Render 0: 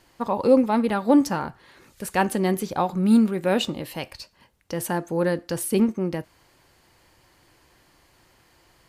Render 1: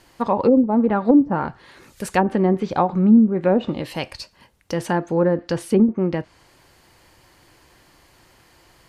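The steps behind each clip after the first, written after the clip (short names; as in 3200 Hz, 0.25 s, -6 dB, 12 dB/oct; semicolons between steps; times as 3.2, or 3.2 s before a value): treble ducked by the level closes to 360 Hz, closed at -14.5 dBFS; gain +5 dB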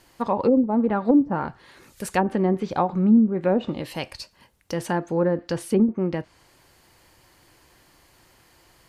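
high shelf 8600 Hz +5.5 dB; gain -3.5 dB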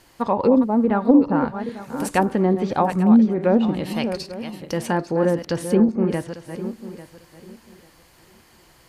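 regenerating reverse delay 0.423 s, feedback 45%, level -9 dB; gain +2.5 dB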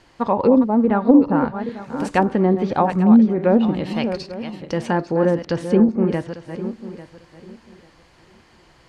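air absorption 94 m; gain +2 dB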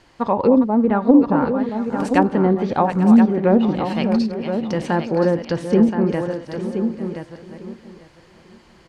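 echo 1.024 s -8 dB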